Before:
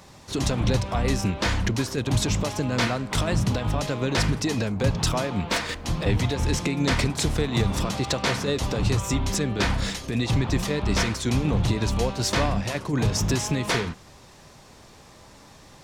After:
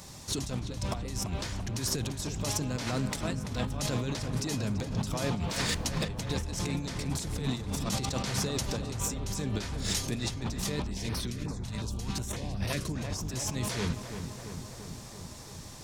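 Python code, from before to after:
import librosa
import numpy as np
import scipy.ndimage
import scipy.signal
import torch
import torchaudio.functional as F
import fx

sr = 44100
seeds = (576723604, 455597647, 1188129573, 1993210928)

y = fx.bass_treble(x, sr, bass_db=5, treble_db=11)
y = fx.over_compress(y, sr, threshold_db=-26.0, ratio=-1.0)
y = fx.echo_filtered(y, sr, ms=337, feedback_pct=73, hz=2400.0, wet_db=-8.0)
y = fx.filter_held_notch(y, sr, hz=5.5, low_hz=360.0, high_hz=7200.0, at=(10.87, 12.88), fade=0.02)
y = y * 10.0 ** (-8.0 / 20.0)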